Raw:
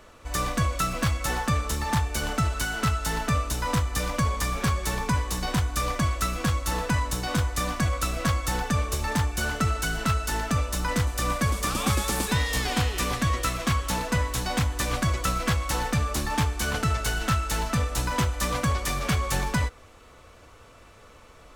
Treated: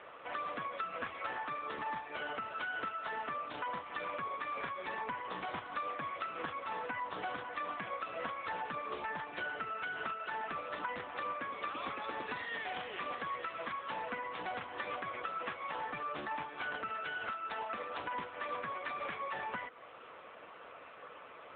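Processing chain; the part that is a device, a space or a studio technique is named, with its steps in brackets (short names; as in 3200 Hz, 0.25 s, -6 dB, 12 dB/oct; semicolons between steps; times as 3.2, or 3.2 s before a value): 17.21–17.97 elliptic high-pass 210 Hz, stop band 60 dB; voicemail (BPF 420–3100 Hz; compressor 10:1, threshold -39 dBFS, peak gain reduction 15 dB; gain +4 dB; AMR-NB 7.95 kbps 8000 Hz)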